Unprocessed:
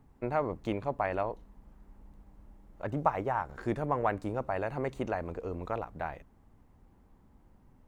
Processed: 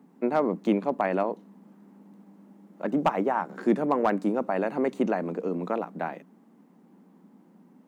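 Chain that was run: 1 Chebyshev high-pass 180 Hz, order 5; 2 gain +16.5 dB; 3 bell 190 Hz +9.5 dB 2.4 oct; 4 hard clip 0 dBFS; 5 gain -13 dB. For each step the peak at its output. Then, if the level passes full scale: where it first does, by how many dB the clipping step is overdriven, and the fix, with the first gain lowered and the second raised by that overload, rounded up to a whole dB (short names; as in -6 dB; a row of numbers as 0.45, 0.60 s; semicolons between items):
-12.0, +4.5, +6.5, 0.0, -13.0 dBFS; step 2, 6.5 dB; step 2 +9.5 dB, step 5 -6 dB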